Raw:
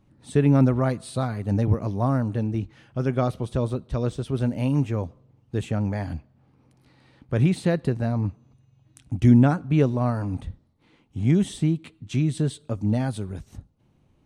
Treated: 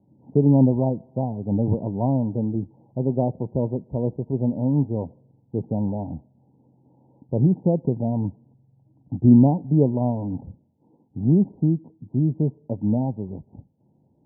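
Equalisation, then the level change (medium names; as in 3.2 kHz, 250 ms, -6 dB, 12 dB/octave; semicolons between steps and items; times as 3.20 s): high-pass 150 Hz 12 dB/octave; Chebyshev low-pass 960 Hz, order 8; bass shelf 360 Hz +5.5 dB; 0.0 dB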